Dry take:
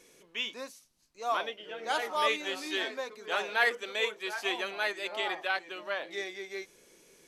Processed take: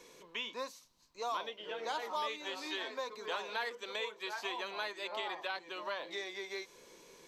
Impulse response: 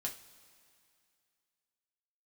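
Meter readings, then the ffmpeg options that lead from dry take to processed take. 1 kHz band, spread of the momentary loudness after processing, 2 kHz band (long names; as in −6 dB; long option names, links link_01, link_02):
−5.5 dB, 7 LU, −9.5 dB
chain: -filter_complex "[0:a]acrossover=split=340|3500[link_01][link_02][link_03];[link_01]acompressor=threshold=-57dB:ratio=4[link_04];[link_02]acompressor=threshold=-43dB:ratio=4[link_05];[link_03]acompressor=threshold=-51dB:ratio=4[link_06];[link_04][link_05][link_06]amix=inputs=3:normalize=0,equalizer=frequency=500:width_type=o:width=0.33:gain=4,equalizer=frequency=1000:width_type=o:width=0.33:gain=12,equalizer=frequency=4000:width_type=o:width=0.33:gain=5,equalizer=frequency=10000:width_type=o:width=0.33:gain=-11,volume=1dB"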